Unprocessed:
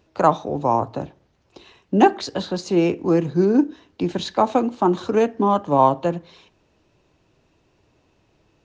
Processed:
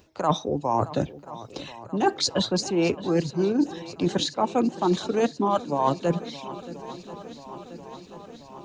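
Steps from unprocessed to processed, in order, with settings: reverb removal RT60 0.91 s; treble shelf 6.1 kHz +11 dB; reverse; compression 10:1, threshold -26 dBFS, peak gain reduction 18.5 dB; reverse; shuffle delay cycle 1034 ms, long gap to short 1.5:1, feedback 66%, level -17 dB; trim +6.5 dB

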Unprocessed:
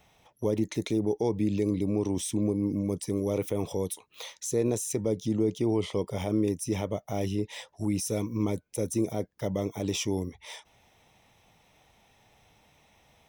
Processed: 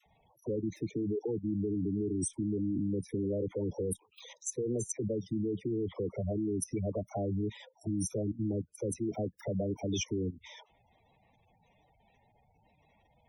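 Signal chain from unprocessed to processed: level held to a coarse grid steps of 17 dB; phase dispersion lows, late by 59 ms, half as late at 760 Hz; spectral gate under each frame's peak -10 dB strong; trim +2.5 dB

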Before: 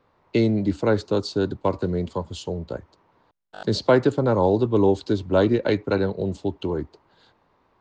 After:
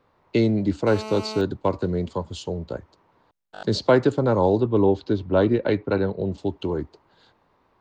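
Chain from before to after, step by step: 0.87–1.41 s: mobile phone buzz -34 dBFS; 4.60–6.38 s: distance through air 160 m

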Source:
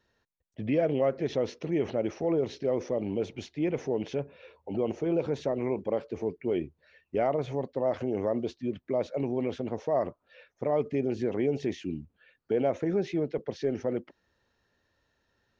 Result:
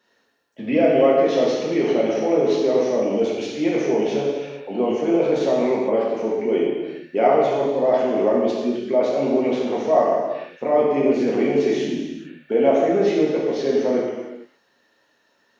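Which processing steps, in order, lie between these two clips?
high-pass 270 Hz 12 dB/octave; gated-style reverb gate 490 ms falling, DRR -5 dB; trim +6 dB

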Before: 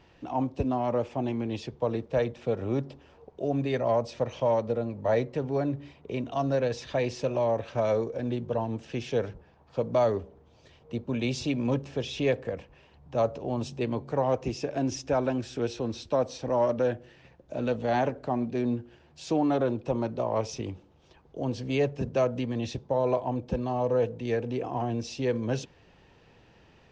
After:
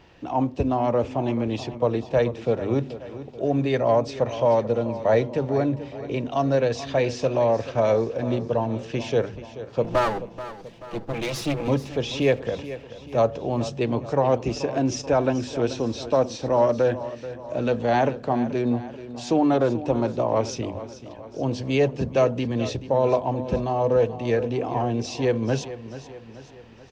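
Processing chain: 9.84–11.68 s: comb filter that takes the minimum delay 6 ms; hum notches 50/100/150/200/250 Hz; feedback delay 433 ms, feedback 51%, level -14 dB; trim +5.5 dB

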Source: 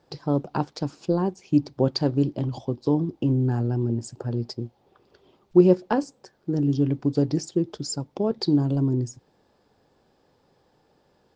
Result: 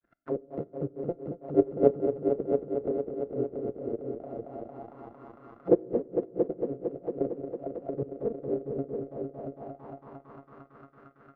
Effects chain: sorted samples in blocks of 64 samples; harmonic-percussive split harmonic -16 dB; peaking EQ 910 Hz -7.5 dB 0.73 oct; level held to a coarse grid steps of 12 dB; granulator 143 ms, grains 3.9 per s, spray 30 ms, pitch spread up and down by 0 st; multi-head delay 227 ms, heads all three, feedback 64%, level -9.5 dB; on a send at -20.5 dB: reverberation RT60 0.70 s, pre-delay 6 ms; on the sum: touch-sensitive low-pass 460–1600 Hz down, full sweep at -40.5 dBFS; trim +3.5 dB

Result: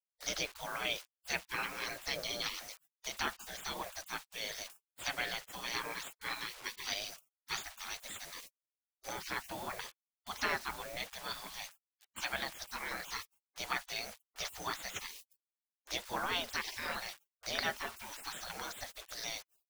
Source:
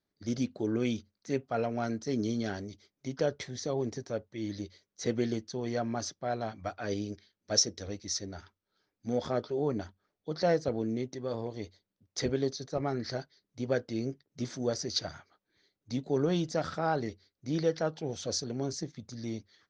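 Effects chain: low-pass that closes with the level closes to 2.6 kHz, closed at -25 dBFS; bit crusher 10-bit; spectral gate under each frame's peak -25 dB weak; trim +13 dB

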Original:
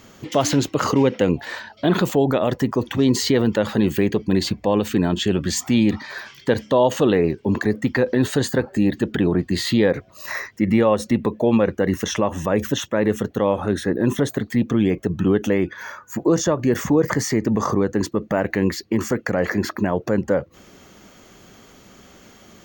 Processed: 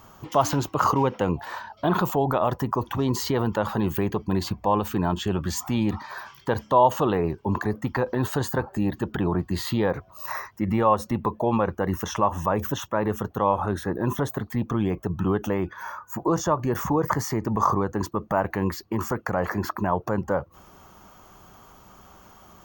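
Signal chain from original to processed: graphic EQ 125/250/500/1000/2000/4000/8000 Hz -3/-9/-8/+8/-11/-8/-8 dB; trim +2 dB

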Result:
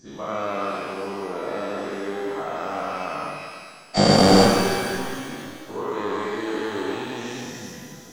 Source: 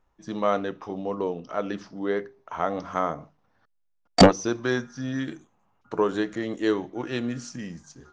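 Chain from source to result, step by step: every event in the spectrogram widened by 480 ms; pitch-shifted reverb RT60 1.9 s, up +12 st, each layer -8 dB, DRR 1.5 dB; trim -10.5 dB

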